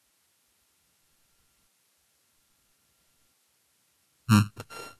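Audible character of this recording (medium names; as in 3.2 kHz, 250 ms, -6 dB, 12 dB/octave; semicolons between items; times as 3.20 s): a buzz of ramps at a fixed pitch in blocks of 32 samples; tremolo saw up 0.6 Hz, depth 85%; a quantiser's noise floor 12-bit, dither triangular; Vorbis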